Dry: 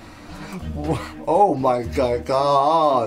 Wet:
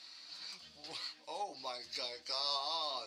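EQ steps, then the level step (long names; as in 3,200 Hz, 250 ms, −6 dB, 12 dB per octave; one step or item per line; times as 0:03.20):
resonant band-pass 4,500 Hz, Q 5.4
+4.5 dB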